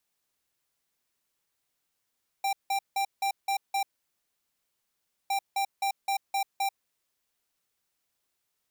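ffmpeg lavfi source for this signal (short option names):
-f lavfi -i "aevalsrc='0.0422*(2*lt(mod(788*t,1),0.5)-1)*clip(min(mod(mod(t,2.86),0.26),0.09-mod(mod(t,2.86),0.26))/0.005,0,1)*lt(mod(t,2.86),1.56)':d=5.72:s=44100"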